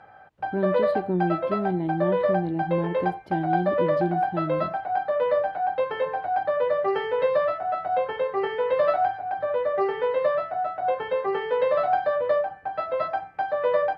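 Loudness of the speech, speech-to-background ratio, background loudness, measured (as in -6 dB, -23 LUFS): -29.0 LUFS, -3.5 dB, -25.5 LUFS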